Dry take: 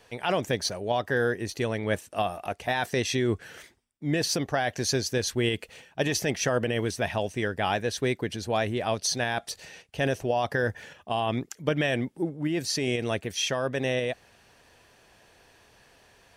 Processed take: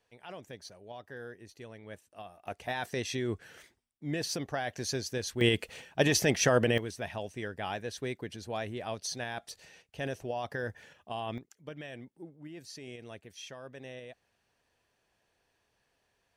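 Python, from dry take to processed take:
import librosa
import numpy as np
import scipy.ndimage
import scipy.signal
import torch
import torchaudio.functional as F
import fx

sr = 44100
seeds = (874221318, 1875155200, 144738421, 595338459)

y = fx.gain(x, sr, db=fx.steps((0.0, -19.0), (2.47, -7.5), (5.41, 1.0), (6.78, -9.5), (11.38, -18.0)))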